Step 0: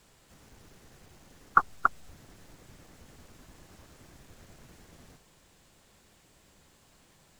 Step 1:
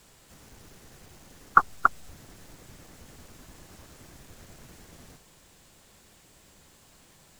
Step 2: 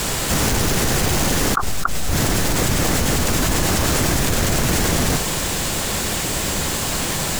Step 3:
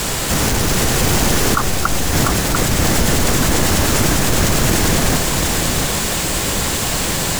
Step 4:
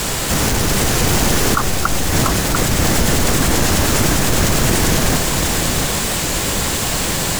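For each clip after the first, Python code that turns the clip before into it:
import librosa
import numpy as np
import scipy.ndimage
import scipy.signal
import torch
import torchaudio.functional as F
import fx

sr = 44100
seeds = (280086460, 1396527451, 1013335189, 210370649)

y1 = fx.high_shelf(x, sr, hz=5900.0, db=4.5)
y1 = y1 * 10.0 ** (3.5 / 20.0)
y2 = fx.env_flatten(y1, sr, amount_pct=100)
y2 = y2 * 10.0 ** (-5.0 / 20.0)
y3 = y2 + 10.0 ** (-4.5 / 20.0) * np.pad(y2, (int(694 * sr / 1000.0), 0))[:len(y2)]
y3 = y3 * 10.0 ** (2.0 / 20.0)
y4 = fx.record_warp(y3, sr, rpm=45.0, depth_cents=100.0)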